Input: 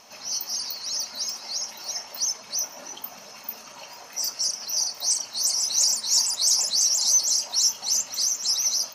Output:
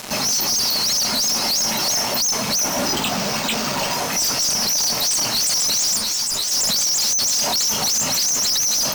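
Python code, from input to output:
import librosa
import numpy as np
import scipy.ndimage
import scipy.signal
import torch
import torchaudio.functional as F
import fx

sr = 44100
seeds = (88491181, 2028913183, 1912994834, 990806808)

p1 = fx.peak_eq(x, sr, hz=160.0, db=12.5, octaves=2.2)
p2 = fx.over_compress(p1, sr, threshold_db=-26.0, ratio=-1.0)
p3 = p1 + (p2 * librosa.db_to_amplitude(-2.5))
p4 = fx.fuzz(p3, sr, gain_db=44.0, gate_db=-40.0)
p5 = fx.resample_bad(p4, sr, factor=4, down='none', up='hold', at=(2.86, 3.94))
p6 = fx.ensemble(p5, sr, at=(5.97, 6.5), fade=0.02)
y = p6 * librosa.db_to_amplitude(-5.0)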